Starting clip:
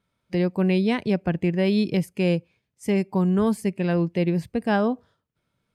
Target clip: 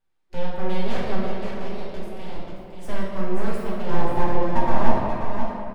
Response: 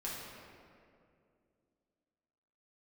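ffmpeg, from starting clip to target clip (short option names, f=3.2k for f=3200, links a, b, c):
-filter_complex "[0:a]asettb=1/sr,asplit=3[a][b][c];[a]atrim=end=1.244[d];[b]atrim=start=1.24:end=2.36,asetpts=PTS-STARTPTS,afade=t=in:d=0.004:c=qsin,afade=t=out:st=1.116:d=0.004:c=qsin,acompressor=threshold=-28dB:ratio=6[e];[c]atrim=start=2.356[f];[d][e]acrossfade=d=0.004:c1=hsin:c2=qsin[g];[g][f]acrossfade=d=0.004:c1=qsin:c2=hsin,asettb=1/sr,asplit=3[h][i][j];[h]atrim=end=3.904[k];[i]atrim=start=3.9:end=4.89,asetpts=PTS-STARTPTS,afade=t=in:d=0.004:c=qsin,afade=t=out:st=0.986:d=0.004:c=qsin,lowpass=f=470:t=q:w=5.5[l];[j]atrim=start=4.886[m];[k][l]acrossfade=d=0.004:c1=hsin:c2=qsin[n];[n][m]acrossfade=d=0.004:c1=qsin:c2=hsin,aecho=1:1:535:0.447,aeval=exprs='abs(val(0))':c=same[o];[1:a]atrim=start_sample=2205[p];[o][p]afir=irnorm=-1:irlink=0,volume=-4dB"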